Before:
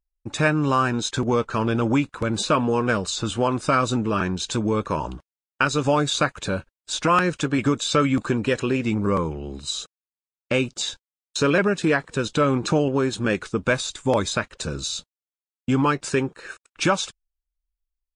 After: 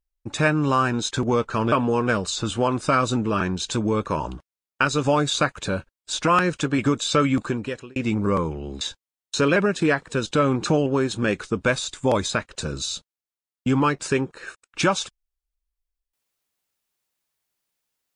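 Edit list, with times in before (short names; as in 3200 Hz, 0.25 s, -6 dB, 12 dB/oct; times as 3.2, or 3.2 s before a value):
1.72–2.52 cut
8.15–8.76 fade out
9.61–10.83 cut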